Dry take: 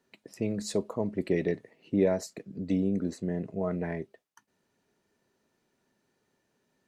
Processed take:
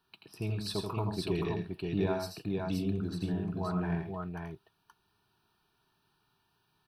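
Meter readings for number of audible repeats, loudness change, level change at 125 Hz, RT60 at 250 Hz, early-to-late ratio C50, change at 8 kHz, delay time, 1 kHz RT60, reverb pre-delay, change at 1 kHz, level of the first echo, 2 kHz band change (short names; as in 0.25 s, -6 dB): 3, -3.0 dB, +2.0 dB, none, none, -6.0 dB, 83 ms, none, none, +3.5 dB, -5.0 dB, -1.5 dB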